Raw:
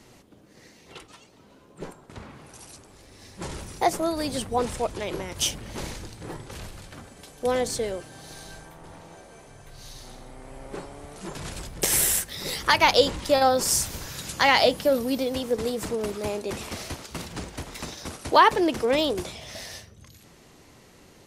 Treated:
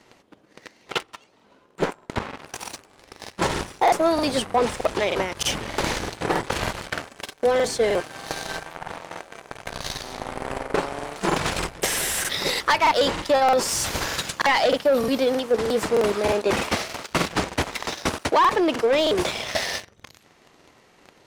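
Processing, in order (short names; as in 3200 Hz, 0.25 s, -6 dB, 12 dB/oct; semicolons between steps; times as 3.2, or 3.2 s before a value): sample leveller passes 3; in parallel at -1.5 dB: limiter -12.5 dBFS, peak gain reduction 8 dB; on the sum: transient shaper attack +11 dB, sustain -1 dB; reverse; compressor 6:1, threshold -15 dBFS, peak gain reduction 16 dB; reverse; overdrive pedal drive 13 dB, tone 2400 Hz, clips at -2.5 dBFS; crackling interface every 0.31 s, samples 2048, repeat, from 0.73; gain -5.5 dB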